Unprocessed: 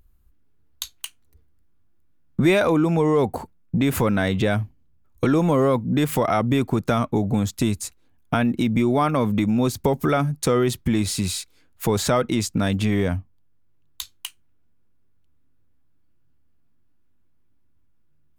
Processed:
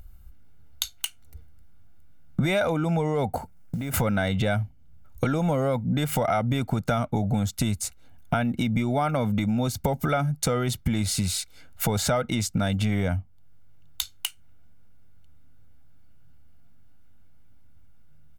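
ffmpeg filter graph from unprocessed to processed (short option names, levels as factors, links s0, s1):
-filter_complex "[0:a]asettb=1/sr,asplit=3[s0][s1][s2];[s0]atrim=end=3.384[s3];[s1]atrim=start=3.38:end=3.94,asetpts=PTS-STARTPTS,afade=t=in:d=0.004:c=qsin,afade=t=out:st=0.556:d=0.004:c=qsin,acrusher=bits=7:mode=log:mix=0:aa=0.000001,acompressor=threshold=0.0158:ratio=3:attack=3.2:release=140:knee=1:detection=peak,equalizer=f=3600:t=o:w=0.98:g=-5.5[s4];[s2]atrim=start=3.936[s5];[s3][s4]acrossfade=d=0.004:c1=hsin:c2=qsin[s6];[s6][s5]acrossfade=d=0.004:c1=qsin:c2=hsin,aecho=1:1:1.4:0.57,acompressor=threshold=0.0141:ratio=2.5,volume=2.66"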